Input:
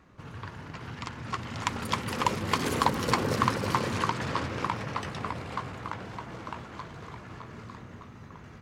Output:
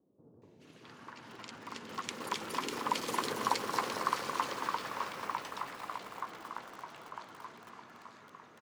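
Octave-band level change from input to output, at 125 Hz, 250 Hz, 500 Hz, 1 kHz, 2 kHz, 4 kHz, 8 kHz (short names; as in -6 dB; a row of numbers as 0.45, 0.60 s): -20.5, -11.5, -7.5, -5.0, -6.5, -5.0, -3.5 dB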